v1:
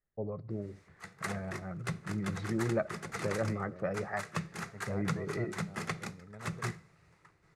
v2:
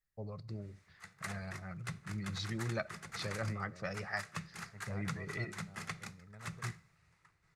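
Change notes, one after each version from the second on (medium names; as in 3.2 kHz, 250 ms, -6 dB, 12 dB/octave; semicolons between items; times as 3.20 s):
first voice: remove low-pass 1.7 kHz 12 dB/octave; background -3.0 dB; master: add peaking EQ 380 Hz -10.5 dB 2.2 oct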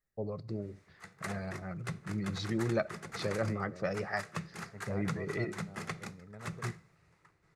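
master: add peaking EQ 380 Hz +10.5 dB 2.2 oct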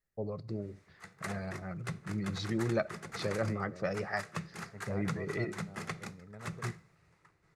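no change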